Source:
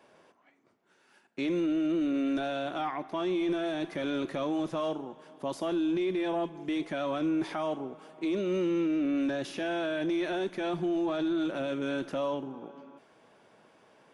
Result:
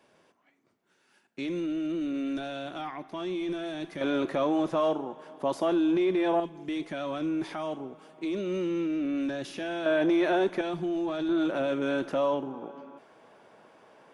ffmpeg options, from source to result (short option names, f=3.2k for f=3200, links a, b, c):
-af "asetnsamples=n=441:p=0,asendcmd='4.01 equalizer g 6.5;6.4 equalizer g -2;9.86 equalizer g 9;10.61 equalizer g -1;11.29 equalizer g 5.5',equalizer=f=770:t=o:w=2.9:g=-4.5"